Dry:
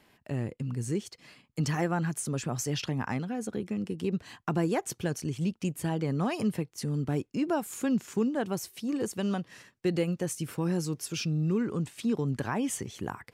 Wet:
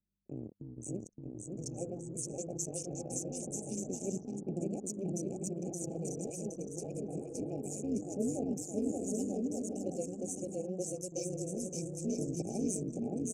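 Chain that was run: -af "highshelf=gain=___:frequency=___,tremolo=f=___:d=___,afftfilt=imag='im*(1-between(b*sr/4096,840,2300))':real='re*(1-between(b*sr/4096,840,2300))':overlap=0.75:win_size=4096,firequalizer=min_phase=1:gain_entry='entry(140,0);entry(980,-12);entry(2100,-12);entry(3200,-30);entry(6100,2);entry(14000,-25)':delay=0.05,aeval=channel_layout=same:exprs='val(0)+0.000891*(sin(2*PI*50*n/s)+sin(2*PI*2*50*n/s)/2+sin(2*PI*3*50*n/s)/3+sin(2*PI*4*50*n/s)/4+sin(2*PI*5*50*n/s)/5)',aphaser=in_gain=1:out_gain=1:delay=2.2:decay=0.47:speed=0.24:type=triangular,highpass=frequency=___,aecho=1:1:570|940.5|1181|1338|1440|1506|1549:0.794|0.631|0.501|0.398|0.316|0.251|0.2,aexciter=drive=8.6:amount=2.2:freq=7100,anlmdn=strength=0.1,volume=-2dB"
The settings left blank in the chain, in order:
-9, 11000, 190, 0.974, 240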